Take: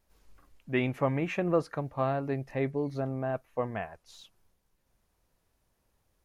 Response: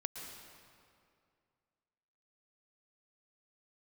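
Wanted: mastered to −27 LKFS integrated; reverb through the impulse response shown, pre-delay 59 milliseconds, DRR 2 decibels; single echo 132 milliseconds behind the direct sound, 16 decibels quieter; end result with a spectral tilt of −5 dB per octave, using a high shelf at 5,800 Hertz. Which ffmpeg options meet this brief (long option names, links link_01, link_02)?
-filter_complex "[0:a]highshelf=frequency=5800:gain=-5,aecho=1:1:132:0.158,asplit=2[link_01][link_02];[1:a]atrim=start_sample=2205,adelay=59[link_03];[link_02][link_03]afir=irnorm=-1:irlink=0,volume=-1.5dB[link_04];[link_01][link_04]amix=inputs=2:normalize=0,volume=2.5dB"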